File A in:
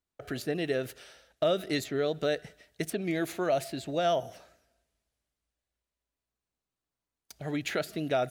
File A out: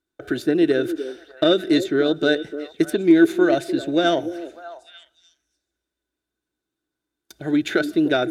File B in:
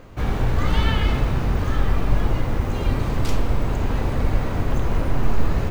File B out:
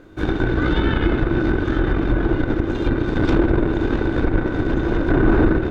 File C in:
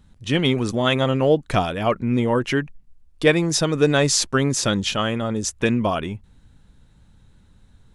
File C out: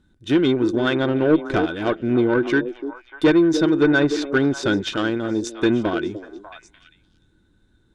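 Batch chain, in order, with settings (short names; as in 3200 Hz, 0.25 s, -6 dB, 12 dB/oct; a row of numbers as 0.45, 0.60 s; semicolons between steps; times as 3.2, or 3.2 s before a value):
added harmonics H 5 -25 dB, 6 -18 dB, 7 -18 dB, 8 -23 dB, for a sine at -4 dBFS; in parallel at -1 dB: limiter -12 dBFS; on the sum: treble ducked by the level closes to 2300 Hz, closed at -10.5 dBFS; small resonant body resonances 330/1500/3600 Hz, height 16 dB, ringing for 40 ms; on a send: delay with a stepping band-pass 0.297 s, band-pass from 370 Hz, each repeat 1.4 oct, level -9 dB; on the sum: soft clip -1.5 dBFS; match loudness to -20 LUFS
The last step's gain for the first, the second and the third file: +5.0, -3.5, -7.0 dB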